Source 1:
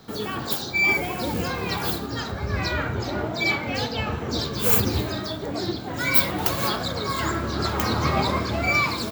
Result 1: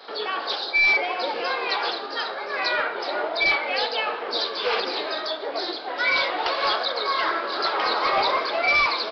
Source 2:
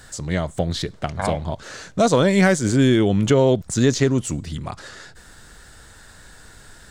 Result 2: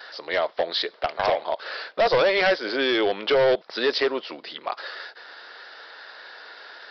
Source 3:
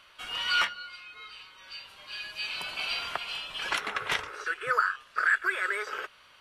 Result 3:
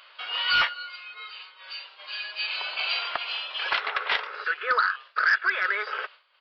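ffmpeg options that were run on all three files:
-af "agate=range=-33dB:threshold=-44dB:ratio=3:detection=peak,highpass=f=460:w=0.5412,highpass=f=460:w=1.3066,acompressor=mode=upward:threshold=-40dB:ratio=2.5,aresample=11025,asoftclip=type=hard:threshold=-20.5dB,aresample=44100,volume=4.5dB"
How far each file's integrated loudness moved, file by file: +0.5, -4.0, +3.5 LU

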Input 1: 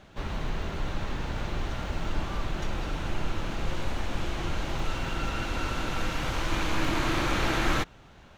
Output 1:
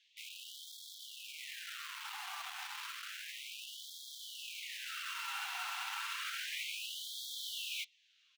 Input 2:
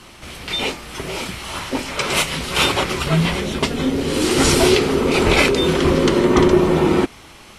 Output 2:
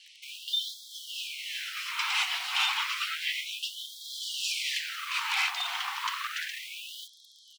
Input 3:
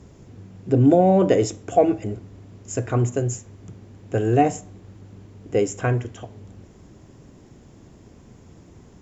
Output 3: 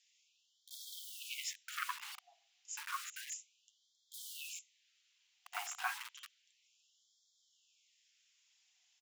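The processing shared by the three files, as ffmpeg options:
-filter_complex "[0:a]aeval=exprs='(tanh(3.16*val(0)+0.3)-tanh(0.3))/3.16':c=same,firequalizer=gain_entry='entry(130,0);entry(240,7);entry(390,14);entry(640,5);entry(3400,8)':delay=0.05:min_phase=1,flanger=delay=4.6:depth=7.5:regen=-41:speed=0.46:shape=triangular,acrossover=split=370|2500[a][b][c];[a]aecho=1:1:505:0.422[d];[b]acrusher=bits=5:mix=0:aa=0.000001[e];[c]lowpass=5.3k[f];[d][e][f]amix=inputs=3:normalize=0,aeval=exprs='0.447*(abs(mod(val(0)/0.447+3,4)-2)-1)':c=same,equalizer=f=2.8k:t=o:w=0.62:g=3,alimiter=limit=-9dB:level=0:latency=1:release=14,afftfilt=real='re*gte(b*sr/1024,680*pow(3200/680,0.5+0.5*sin(2*PI*0.31*pts/sr)))':imag='im*gte(b*sr/1024,680*pow(3200/680,0.5+0.5*sin(2*PI*0.31*pts/sr)))':win_size=1024:overlap=0.75,volume=-8dB"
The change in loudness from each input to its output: -10.0, -13.5, -23.0 LU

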